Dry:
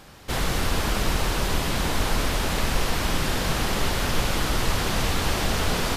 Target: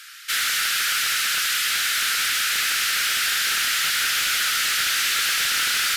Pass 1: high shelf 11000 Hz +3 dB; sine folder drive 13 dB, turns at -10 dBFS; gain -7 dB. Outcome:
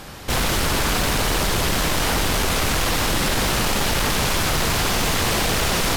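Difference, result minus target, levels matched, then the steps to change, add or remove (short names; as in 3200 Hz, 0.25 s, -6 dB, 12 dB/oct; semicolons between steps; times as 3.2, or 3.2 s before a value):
1000 Hz band +6.5 dB
add first: steep high-pass 1300 Hz 96 dB/oct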